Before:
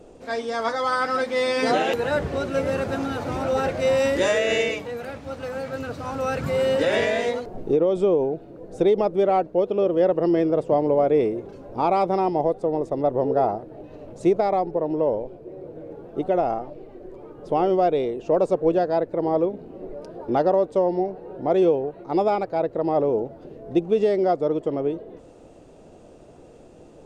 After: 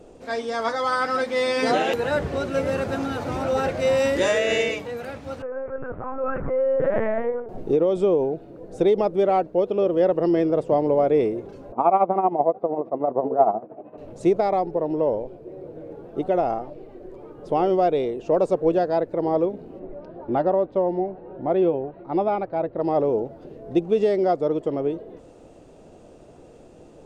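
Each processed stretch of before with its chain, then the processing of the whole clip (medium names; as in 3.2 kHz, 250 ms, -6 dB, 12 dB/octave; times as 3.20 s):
5.42–7.49 s: low-pass 1.6 kHz 24 dB/octave + LPC vocoder at 8 kHz pitch kept
11.72–13.98 s: tremolo 13 Hz, depth 70% + cabinet simulation 180–2300 Hz, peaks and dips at 220 Hz +5 dB, 700 Hz +8 dB, 1.1 kHz +7 dB, 1.8 kHz -6 dB
19.79–22.80 s: distance through air 300 m + band-stop 450 Hz, Q 7.2
whole clip: none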